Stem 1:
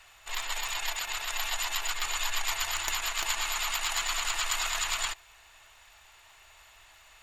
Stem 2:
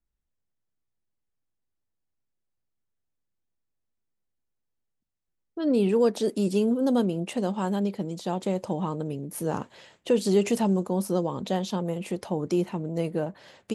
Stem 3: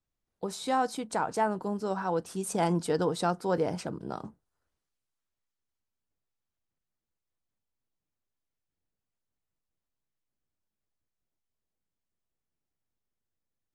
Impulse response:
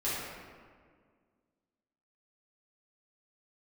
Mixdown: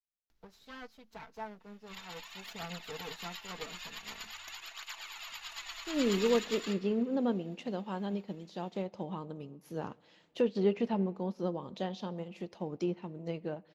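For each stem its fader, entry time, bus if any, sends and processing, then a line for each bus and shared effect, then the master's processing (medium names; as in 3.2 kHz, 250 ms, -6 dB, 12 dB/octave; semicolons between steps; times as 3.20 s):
-7.5 dB, 1.60 s, send -14.5 dB, cancelling through-zero flanger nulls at 0.46 Hz, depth 6.2 ms
-6.0 dB, 0.30 s, send -23.5 dB, low-pass that closes with the level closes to 2.3 kHz, closed at -19.5 dBFS; upward compressor, threshold -34 dBFS
-10.0 dB, 0.00 s, no send, comb filter that takes the minimum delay 4.5 ms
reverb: on, RT60 1.8 s, pre-delay 3 ms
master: boxcar filter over 5 samples; treble shelf 3 kHz +11.5 dB; upward expansion 1.5:1, over -50 dBFS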